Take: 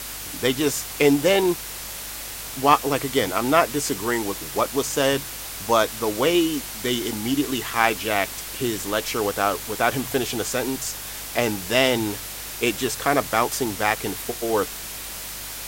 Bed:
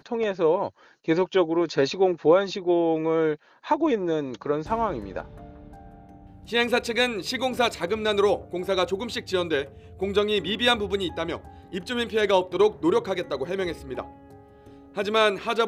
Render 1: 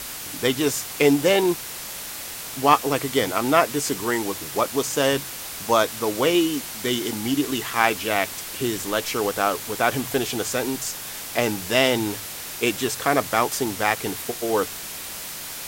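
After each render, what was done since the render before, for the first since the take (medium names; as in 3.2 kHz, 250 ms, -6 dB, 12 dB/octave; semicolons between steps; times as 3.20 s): de-hum 50 Hz, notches 2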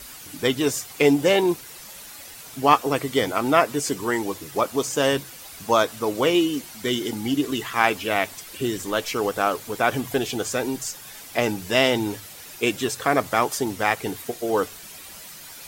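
noise reduction 10 dB, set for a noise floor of -35 dBFS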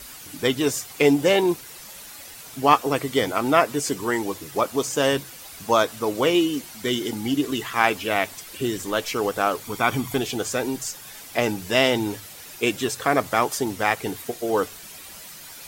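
9.64–10.21 s: comb 0.9 ms, depth 50%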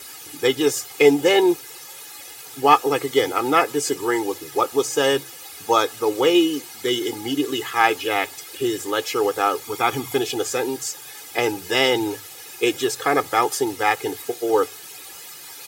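high-pass 150 Hz 12 dB/octave; comb 2.4 ms, depth 79%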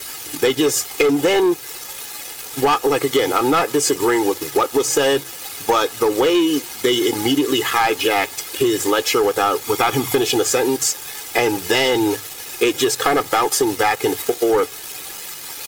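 waveshaping leveller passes 3; compression, threshold -14 dBFS, peak gain reduction 9.5 dB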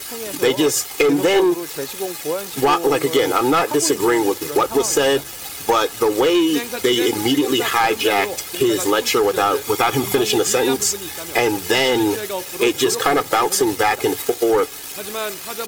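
add bed -6 dB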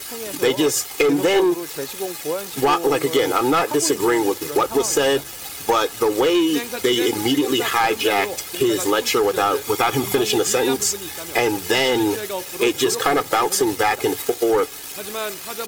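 trim -1.5 dB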